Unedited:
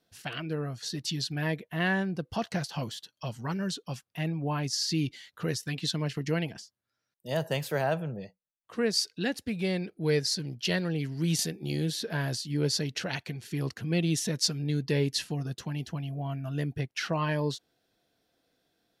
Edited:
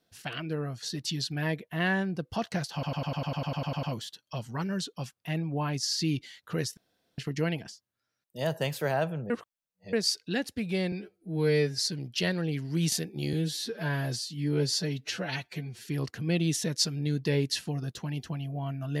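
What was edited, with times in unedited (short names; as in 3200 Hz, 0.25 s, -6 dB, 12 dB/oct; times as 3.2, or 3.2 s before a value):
2.73 stutter 0.10 s, 12 plays
5.67–6.08 room tone
8.2–8.83 reverse
9.82–10.25 stretch 2×
11.8–13.48 stretch 1.5×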